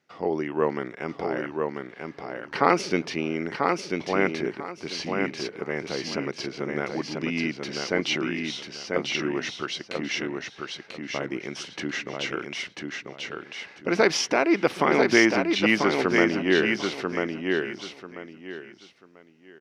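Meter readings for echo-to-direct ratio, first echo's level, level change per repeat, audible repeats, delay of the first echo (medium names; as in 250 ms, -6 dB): -3.5 dB, -4.0 dB, -12.5 dB, 3, 991 ms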